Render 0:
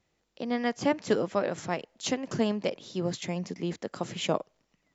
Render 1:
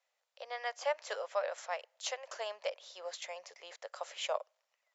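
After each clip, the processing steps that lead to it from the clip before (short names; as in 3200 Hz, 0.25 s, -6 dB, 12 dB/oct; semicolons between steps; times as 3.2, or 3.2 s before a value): elliptic high-pass 550 Hz, stop band 50 dB; gain -4.5 dB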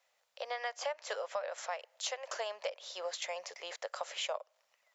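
compressor 5:1, threshold -42 dBFS, peak gain reduction 13 dB; gain +7 dB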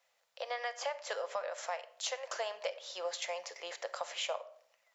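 reverb RT60 0.60 s, pre-delay 6 ms, DRR 10 dB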